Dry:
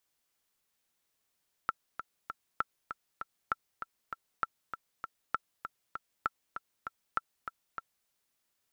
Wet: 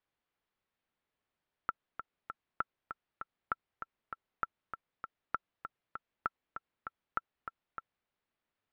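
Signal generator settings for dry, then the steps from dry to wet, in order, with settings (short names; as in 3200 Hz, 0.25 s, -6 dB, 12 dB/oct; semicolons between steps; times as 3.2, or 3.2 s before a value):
metronome 197 bpm, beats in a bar 3, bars 7, 1340 Hz, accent 9 dB -15.5 dBFS
air absorption 360 m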